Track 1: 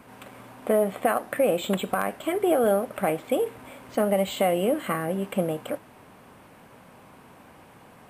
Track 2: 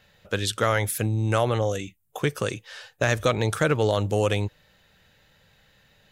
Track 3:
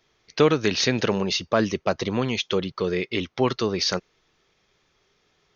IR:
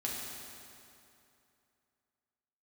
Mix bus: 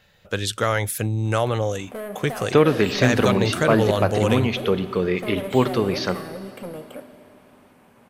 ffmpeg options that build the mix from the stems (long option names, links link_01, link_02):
-filter_complex "[0:a]asoftclip=type=tanh:threshold=-23dB,adelay=1250,volume=-7.5dB,asplit=2[link_01][link_02];[link_02]volume=-7.5dB[link_03];[1:a]volume=1dB[link_04];[2:a]bass=frequency=250:gain=2,treble=frequency=4000:gain=-14,adelay=2150,volume=1dB,asplit=2[link_05][link_06];[link_06]volume=-13dB[link_07];[3:a]atrim=start_sample=2205[link_08];[link_03][link_07]amix=inputs=2:normalize=0[link_09];[link_09][link_08]afir=irnorm=-1:irlink=0[link_10];[link_01][link_04][link_05][link_10]amix=inputs=4:normalize=0"